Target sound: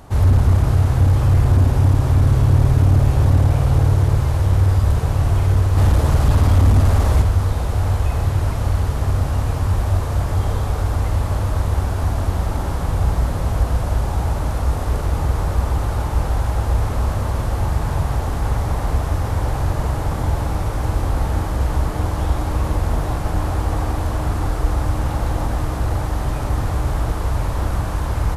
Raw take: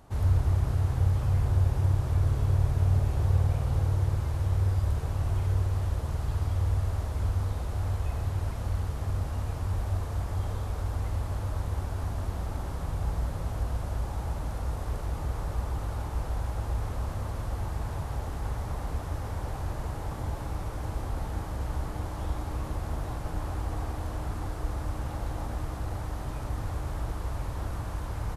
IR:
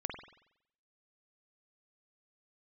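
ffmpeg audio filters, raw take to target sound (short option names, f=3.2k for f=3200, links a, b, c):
-filter_complex "[0:a]asettb=1/sr,asplit=3[a][b][c];[a]atrim=end=5.774[d];[b]atrim=start=5.77:end=7.22,asetpts=PTS-STARTPTS,afade=t=in:d=0.004:c=qsin,afade=t=out:st=1.446:d=0.004:c=qsin,acontrast=22[e];[c]atrim=start=7.216[f];[d][e]acrossfade=d=0.004:c1=hsin:c2=qsin[g];[g][f]acrossfade=d=0.004:c1=qsin:c2=hsin,asoftclip=type=hard:threshold=-20dB,asplit=2[h][i];[1:a]atrim=start_sample=2205[j];[i][j]afir=irnorm=-1:irlink=0,volume=-4dB[k];[h][k]amix=inputs=2:normalize=0,volume=8.5dB"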